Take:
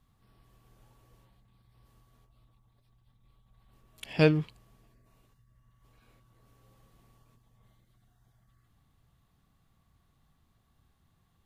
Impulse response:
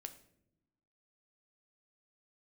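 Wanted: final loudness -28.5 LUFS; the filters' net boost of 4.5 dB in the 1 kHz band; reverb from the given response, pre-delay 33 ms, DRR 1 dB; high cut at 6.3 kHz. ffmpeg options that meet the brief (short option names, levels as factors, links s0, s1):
-filter_complex "[0:a]lowpass=6300,equalizer=f=1000:t=o:g=6,asplit=2[s0][s1];[1:a]atrim=start_sample=2205,adelay=33[s2];[s1][s2]afir=irnorm=-1:irlink=0,volume=1.58[s3];[s0][s3]amix=inputs=2:normalize=0,volume=0.631"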